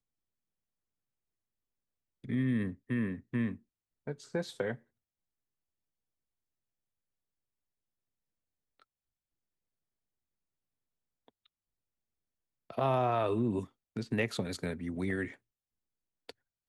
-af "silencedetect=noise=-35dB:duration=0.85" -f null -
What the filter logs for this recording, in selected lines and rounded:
silence_start: 0.00
silence_end: 2.29 | silence_duration: 2.29
silence_start: 4.74
silence_end: 12.70 | silence_duration: 7.97
silence_start: 15.28
silence_end: 16.29 | silence_duration: 1.02